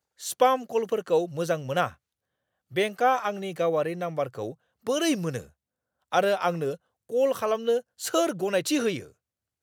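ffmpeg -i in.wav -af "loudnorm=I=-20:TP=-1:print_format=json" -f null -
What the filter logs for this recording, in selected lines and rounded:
"input_i" : "-26.8",
"input_tp" : "-7.8",
"input_lra" : "2.3",
"input_thresh" : "-37.4",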